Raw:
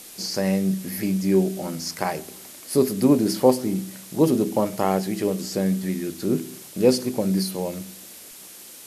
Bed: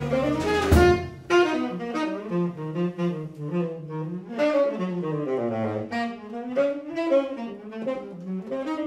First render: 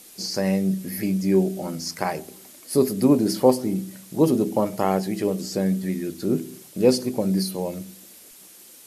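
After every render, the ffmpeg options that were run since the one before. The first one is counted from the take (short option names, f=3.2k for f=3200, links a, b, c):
-af "afftdn=nr=6:nf=-43"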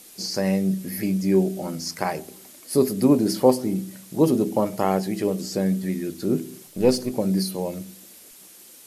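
-filter_complex "[0:a]asettb=1/sr,asplit=3[a][b][c];[a]atrim=end=6.674[d];[b]atrim=start=6.67:end=7.12,asetpts=PTS-STARTPTS,afade=t=in:d=0.004:c=qsin,afade=t=out:st=0.446:d=0.004:c=qsin,aeval=exprs='if(lt(val(0),0),0.708*val(0),val(0))':c=same[e];[c]atrim=start=7.116[f];[d][e]acrossfade=d=0.004:c1=hsin:c2=qsin[g];[g][f]acrossfade=d=0.004:c1=qsin:c2=hsin"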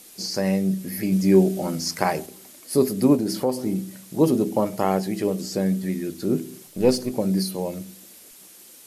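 -filter_complex "[0:a]asettb=1/sr,asplit=3[a][b][c];[a]atrim=end=3.154[d];[b]atrim=start=3.15:end=3.66,asetpts=PTS-STARTPTS,afade=t=in:d=0.004:c=qsin,afade=t=out:st=0.506:d=0.004:c=qsin,acompressor=threshold=-22dB:ratio=2:attack=3.2:release=140:knee=1:detection=peak[e];[c]atrim=start=3.656[f];[d][e]acrossfade=d=0.004:c1=hsin:c2=qsin[g];[g][f]acrossfade=d=0.004:c1=qsin:c2=hsin,asplit=3[h][i][j];[h]atrim=end=1.122[k];[i]atrim=start=1.118:end=2.262,asetpts=PTS-STARTPTS,volume=3.5dB[l];[j]atrim=start=2.258[m];[k][l]acrossfade=d=0.004:c1=hsin:c2=hsin[n];[n][m]acrossfade=d=0.004:c1=hsin:c2=hsin"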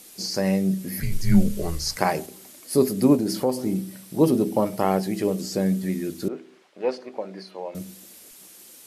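-filter_complex "[0:a]asettb=1/sr,asplit=3[a][b][c];[a]atrim=end=1.004[d];[b]atrim=start=1:end=1.97,asetpts=PTS-STARTPTS,afade=t=in:d=0.004:c=qsin,afade=t=out:st=0.966:d=0.004:c=qsin,afreqshift=-180[e];[c]atrim=start=1.966[f];[d][e]acrossfade=d=0.004:c1=hsin:c2=qsin[g];[g][f]acrossfade=d=0.004:c1=qsin:c2=hsin,asettb=1/sr,asplit=3[h][i][j];[h]atrim=end=3.784[k];[i]atrim=start=3.78:end=5.03,asetpts=PTS-STARTPTS,afade=t=in:d=0.004:c=qsin,afade=t=out:st=1.246:d=0.004:c=qsin,bandreject=f=6.8k:w=8.2[l];[j]atrim=start=5.026[m];[k][l]acrossfade=d=0.004:c1=hsin:c2=qsin[n];[n][m]acrossfade=d=0.004:c1=qsin:c2=hsin,asettb=1/sr,asplit=3[o][p][q];[o]atrim=end=6.284[r];[p]atrim=start=6.28:end=7.75,asetpts=PTS-STARTPTS,afade=t=in:d=0.004:c=qsin,afade=t=out:st=1.466:d=0.004:c=qsin,highpass=610,lowpass=2.3k[s];[q]atrim=start=7.746[t];[r][s]acrossfade=d=0.004:c1=hsin:c2=qsin[u];[u][t]acrossfade=d=0.004:c1=qsin:c2=hsin"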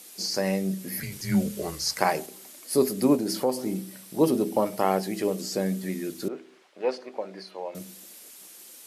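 -af "highpass=89,lowshelf=f=210:g=-10.5"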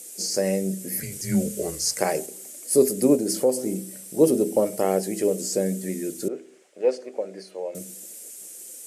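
-af "equalizer=f=500:t=o:w=1:g=8,equalizer=f=1k:t=o:w=1:g=-10,equalizer=f=4k:t=o:w=1:g=-7,equalizer=f=8k:t=o:w=1:g=12"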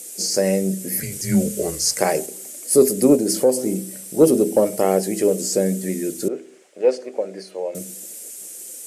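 -af "acontrast=22"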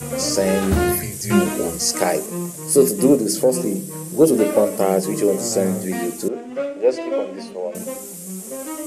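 -filter_complex "[1:a]volume=-2dB[a];[0:a][a]amix=inputs=2:normalize=0"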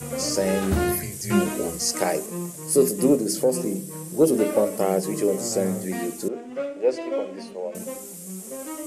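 -af "volume=-4.5dB"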